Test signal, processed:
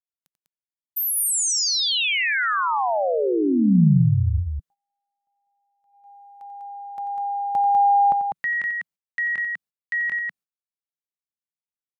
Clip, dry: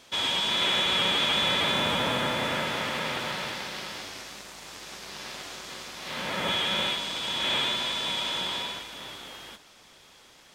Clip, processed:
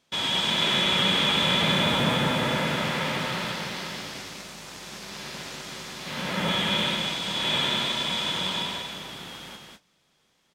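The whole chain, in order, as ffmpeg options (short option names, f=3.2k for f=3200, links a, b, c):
-filter_complex "[0:a]asplit=2[a][b];[b]aecho=0:1:90.38|198.3:0.282|0.631[c];[a][c]amix=inputs=2:normalize=0,agate=range=-16dB:threshold=-48dB:ratio=16:detection=peak,equalizer=f=170:t=o:w=0.95:g=9"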